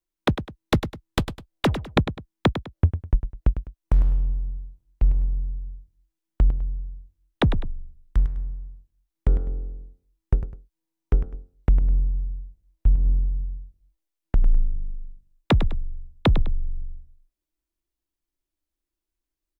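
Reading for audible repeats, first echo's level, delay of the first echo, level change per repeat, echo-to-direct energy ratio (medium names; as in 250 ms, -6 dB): 2, -10.5 dB, 102 ms, -10.0 dB, -10.0 dB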